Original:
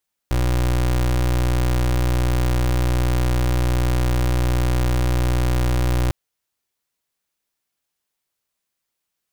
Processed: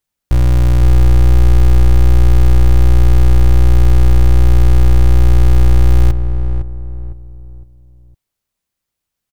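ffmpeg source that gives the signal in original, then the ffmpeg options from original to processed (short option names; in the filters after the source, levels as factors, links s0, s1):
-f lavfi -i "aevalsrc='0.119*(2*lt(mod(61.3*t,1),0.28)-1)':d=5.8:s=44100"
-filter_complex "[0:a]lowshelf=f=180:g=11.5,asplit=2[s0][s1];[s1]adelay=508,lowpass=f=960:p=1,volume=0.447,asplit=2[s2][s3];[s3]adelay=508,lowpass=f=960:p=1,volume=0.37,asplit=2[s4][s5];[s5]adelay=508,lowpass=f=960:p=1,volume=0.37,asplit=2[s6][s7];[s7]adelay=508,lowpass=f=960:p=1,volume=0.37[s8];[s2][s4][s6][s8]amix=inputs=4:normalize=0[s9];[s0][s9]amix=inputs=2:normalize=0"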